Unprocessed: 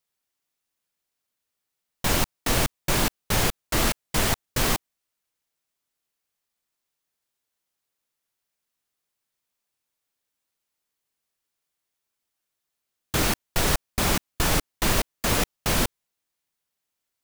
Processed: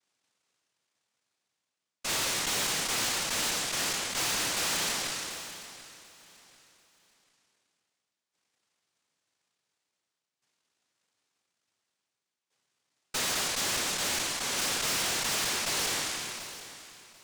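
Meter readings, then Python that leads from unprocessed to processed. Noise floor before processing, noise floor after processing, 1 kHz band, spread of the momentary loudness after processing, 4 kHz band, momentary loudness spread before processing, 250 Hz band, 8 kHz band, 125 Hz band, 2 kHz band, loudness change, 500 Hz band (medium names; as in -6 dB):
-83 dBFS, under -85 dBFS, -6.0 dB, 12 LU, 0.0 dB, 1 LU, -12.0 dB, 0.0 dB, -17.0 dB, -3.0 dB, -4.0 dB, -9.0 dB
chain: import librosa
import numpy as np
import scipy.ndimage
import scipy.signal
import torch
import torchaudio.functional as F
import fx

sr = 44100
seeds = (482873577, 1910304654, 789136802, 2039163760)

p1 = fx.spec_trails(x, sr, decay_s=1.08)
p2 = scipy.signal.sosfilt(scipy.signal.butter(2, 3800.0, 'lowpass', fs=sr, output='sos'), p1)
p3 = fx.peak_eq(p2, sr, hz=2800.0, db=9.0, octaves=0.88)
p4 = fx.level_steps(p3, sr, step_db=9)
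p5 = p3 + F.gain(torch.from_numpy(p4), 1.5).numpy()
p6 = fx.sample_hold(p5, sr, seeds[0], rate_hz=2800.0, jitter_pct=0)
p7 = fx.filter_lfo_highpass(p6, sr, shape='saw_up', hz=0.48, low_hz=480.0, high_hz=3000.0, q=4.3)
p8 = fx.noise_vocoder(p7, sr, seeds[1], bands=1)
p9 = fx.tube_stage(p8, sr, drive_db=24.0, bias=0.35)
p10 = p9 + fx.echo_feedback(p9, sr, ms=739, feedback_pct=30, wet_db=-15.5, dry=0)
p11 = fx.sustainer(p10, sr, db_per_s=21.0)
y = F.gain(torch.from_numpy(p11), -4.5).numpy()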